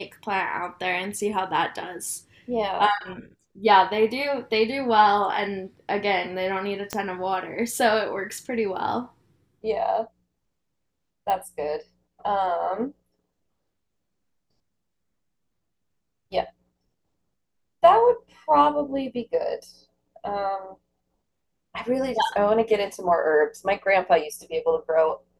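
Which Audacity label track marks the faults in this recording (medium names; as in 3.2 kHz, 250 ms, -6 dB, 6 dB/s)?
6.930000	6.930000	pop -12 dBFS
11.300000	11.300000	pop -14 dBFS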